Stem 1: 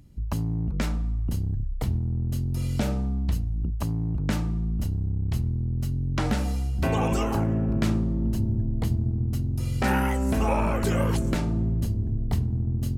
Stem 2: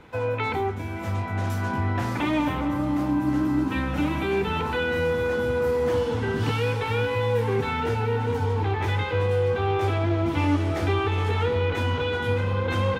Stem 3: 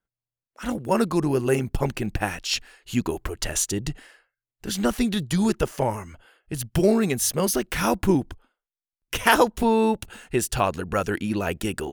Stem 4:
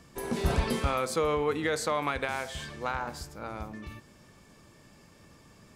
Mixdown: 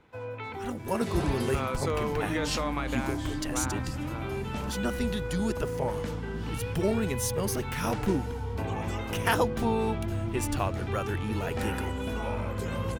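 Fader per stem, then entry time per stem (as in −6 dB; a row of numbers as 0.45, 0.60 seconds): −10.5, −11.5, −8.5, −3.5 decibels; 1.75, 0.00, 0.00, 0.70 seconds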